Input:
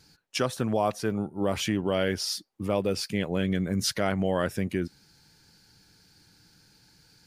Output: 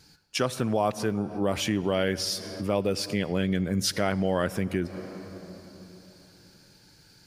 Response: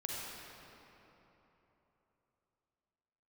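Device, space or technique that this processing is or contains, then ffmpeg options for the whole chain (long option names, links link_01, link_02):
ducked reverb: -filter_complex "[0:a]asplit=3[link_01][link_02][link_03];[1:a]atrim=start_sample=2205[link_04];[link_02][link_04]afir=irnorm=-1:irlink=0[link_05];[link_03]apad=whole_len=320195[link_06];[link_05][link_06]sidechaincompress=threshold=-38dB:ratio=8:attack=40:release=139,volume=-7.5dB[link_07];[link_01][link_07]amix=inputs=2:normalize=0"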